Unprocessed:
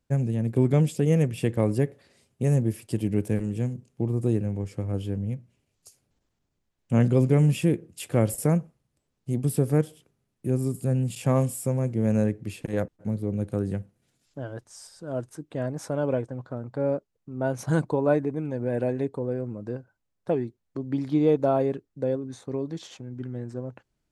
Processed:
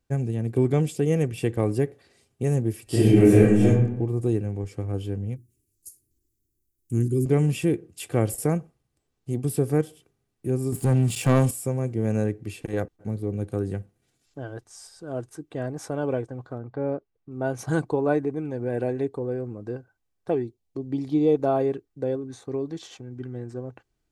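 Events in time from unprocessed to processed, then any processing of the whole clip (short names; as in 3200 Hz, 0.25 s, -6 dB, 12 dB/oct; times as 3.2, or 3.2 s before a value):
2.84–3.68 reverb throw, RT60 0.84 s, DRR -12 dB
5.36–7.26 EQ curve 110 Hz 0 dB, 190 Hz -7 dB, 350 Hz +3 dB, 590 Hz -28 dB, 1500 Hz -18 dB, 3200 Hz -14 dB, 12000 Hz +14 dB
10.72–11.51 sample leveller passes 2
16.58–17.31 air absorption 200 m
20.42–21.35 bell 1500 Hz -13 dB
whole clip: comb 2.6 ms, depth 36%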